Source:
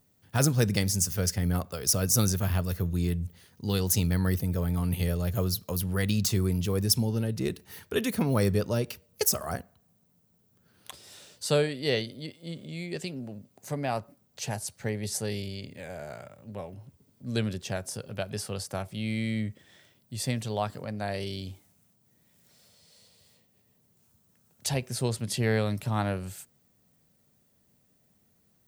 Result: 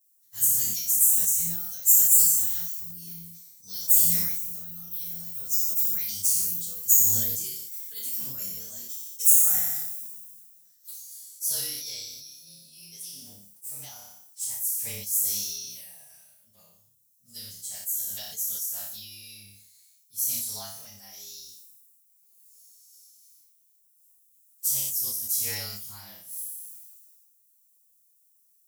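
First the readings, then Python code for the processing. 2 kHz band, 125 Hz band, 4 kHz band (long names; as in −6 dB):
−11.0 dB, −19.5 dB, −2.5 dB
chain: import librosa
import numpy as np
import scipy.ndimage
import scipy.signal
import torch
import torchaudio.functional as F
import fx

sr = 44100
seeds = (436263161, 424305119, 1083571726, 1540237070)

p1 = fx.partial_stretch(x, sr, pct=108)
p2 = fx.curve_eq(p1, sr, hz=(170.0, 320.0, 2500.0, 7200.0), db=(0, -12, -13, 2))
p3 = 10.0 ** (-24.0 / 20.0) * np.tanh(p2 / 10.0 ** (-24.0 / 20.0))
p4 = p2 + (p3 * librosa.db_to_amplitude(-8.0))
p5 = np.diff(p4, prepend=0.0)
p6 = fx.room_flutter(p5, sr, wall_m=5.1, rt60_s=0.53)
p7 = fx.sustainer(p6, sr, db_per_s=32.0)
y = p7 * librosa.db_to_amplitude(4.0)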